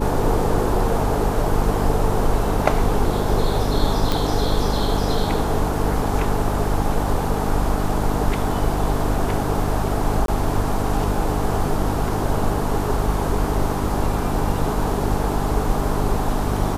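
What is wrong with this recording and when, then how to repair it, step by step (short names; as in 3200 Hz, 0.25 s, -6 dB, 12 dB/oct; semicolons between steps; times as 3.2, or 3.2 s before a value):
hum 50 Hz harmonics 6 -25 dBFS
4.12 pop
10.26–10.28 gap 22 ms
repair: de-click; de-hum 50 Hz, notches 6; interpolate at 10.26, 22 ms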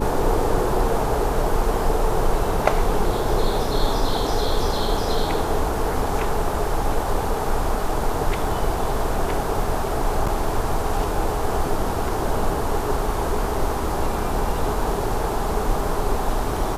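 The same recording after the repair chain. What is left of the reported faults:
none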